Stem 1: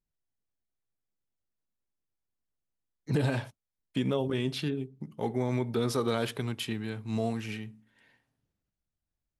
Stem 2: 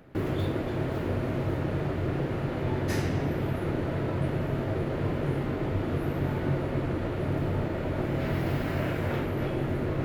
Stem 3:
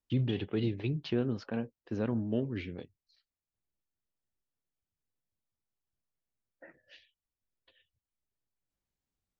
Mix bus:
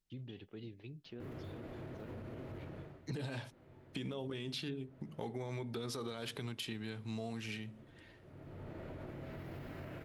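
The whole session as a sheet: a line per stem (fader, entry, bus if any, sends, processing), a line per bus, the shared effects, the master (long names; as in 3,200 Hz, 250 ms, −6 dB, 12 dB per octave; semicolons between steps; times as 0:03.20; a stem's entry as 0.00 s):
−0.5 dB, 0.00 s, no bus, no send, parametric band 4,100 Hz +5.5 dB 1.7 octaves; mains-hum notches 50/100/150/200/250 Hz; brickwall limiter −23 dBFS, peak gain reduction 9 dB
−12.0 dB, 1.05 s, bus A, no send, automatic ducking −16 dB, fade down 0.35 s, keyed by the first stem
−14.0 dB, 0.00 s, bus A, no send, high-shelf EQ 5,700 Hz +9.5 dB
bus A: 0.0 dB, tuned comb filter 650 Hz, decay 0.2 s, mix 30%; brickwall limiter −38 dBFS, peak gain reduction 6.5 dB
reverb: not used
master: downward compressor 3 to 1, threshold −41 dBFS, peak gain reduction 10 dB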